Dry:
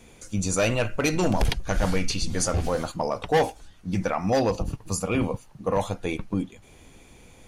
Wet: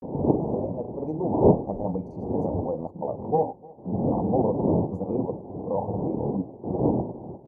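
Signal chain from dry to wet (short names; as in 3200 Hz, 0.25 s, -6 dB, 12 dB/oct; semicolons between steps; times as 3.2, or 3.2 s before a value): opening faded in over 1.52 s; wind noise 400 Hz -24 dBFS; elliptic low-pass 900 Hz, stop band 40 dB; expander -33 dBFS; HPF 110 Hz 12 dB/oct; upward compressor, threshold -33 dBFS; grains, spray 31 ms, pitch spread up and down by 0 st; feedback echo 0.302 s, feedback 57%, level -23.5 dB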